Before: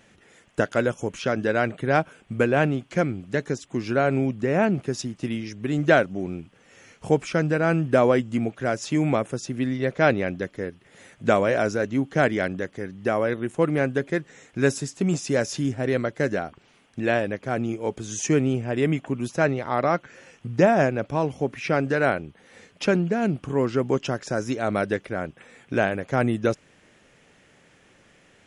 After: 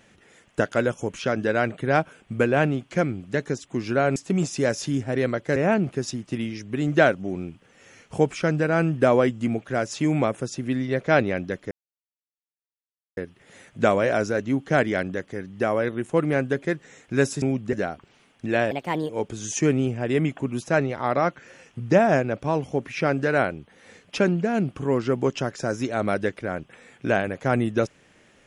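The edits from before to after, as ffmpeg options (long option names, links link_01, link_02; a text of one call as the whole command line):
ffmpeg -i in.wav -filter_complex "[0:a]asplit=8[link_01][link_02][link_03][link_04][link_05][link_06][link_07][link_08];[link_01]atrim=end=4.162[link_09];[link_02]atrim=start=14.868:end=16.272[link_10];[link_03]atrim=start=4.468:end=10.62,asetpts=PTS-STARTPTS,afade=type=out:start_time=6.148:duration=0.004:curve=hsin,apad=pad_dur=1.46[link_11];[link_04]atrim=start=10.62:end=14.872,asetpts=PTS-STARTPTS,afade=type=in:duration=0.004:curve=hsin[link_12];[link_05]atrim=start=4.158:end=4.472[link_13];[link_06]atrim=start=16.268:end=17.254[link_14];[link_07]atrim=start=17.25:end=17.77,asetpts=PTS-STARTPTS,asetrate=59535,aresample=44100[link_15];[link_08]atrim=start=17.766[link_16];[link_09][link_10]acrossfade=duration=0.004:curve1=hsin:curve2=hsin[link_17];[link_11][link_12]concat=n=2:v=0:a=1[link_18];[link_17][link_18]acrossfade=duration=0.004:curve1=hsin:curve2=hsin[link_19];[link_19][link_13]acrossfade=duration=0.004:curve1=hsin:curve2=hsin[link_20];[link_20][link_14]acrossfade=duration=0.004:curve1=hsin:curve2=hsin[link_21];[link_21][link_15]acrossfade=duration=0.004:curve1=hsin:curve2=hsin[link_22];[link_22][link_16]acrossfade=duration=0.004:curve1=hsin:curve2=hsin" out.wav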